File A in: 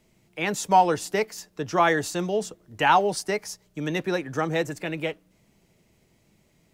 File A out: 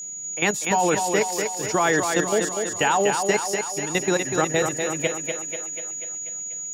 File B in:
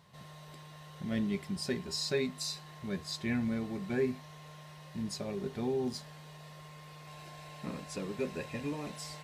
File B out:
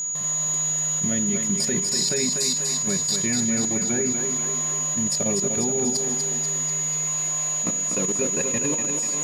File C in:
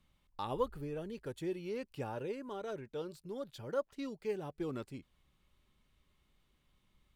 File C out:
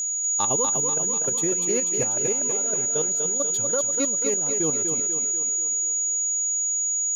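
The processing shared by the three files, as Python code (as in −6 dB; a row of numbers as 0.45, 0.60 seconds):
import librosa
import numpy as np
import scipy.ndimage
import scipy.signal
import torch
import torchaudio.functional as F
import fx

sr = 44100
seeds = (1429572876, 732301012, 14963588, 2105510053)

y = scipy.signal.sosfilt(scipy.signal.butter(2, 100.0, 'highpass', fs=sr, output='sos'), x)
y = fx.high_shelf(y, sr, hz=5300.0, db=4.0)
y = fx.level_steps(y, sr, step_db=13)
y = y + 10.0 ** (-38.0 / 20.0) * np.sin(2.0 * np.pi * 6800.0 * np.arange(len(y)) / sr)
y = fx.echo_thinned(y, sr, ms=244, feedback_pct=60, hz=180.0, wet_db=-5)
y = y * 10.0 ** (-24 / 20.0) / np.sqrt(np.mean(np.square(y)))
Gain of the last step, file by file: +6.0, +13.0, +14.0 decibels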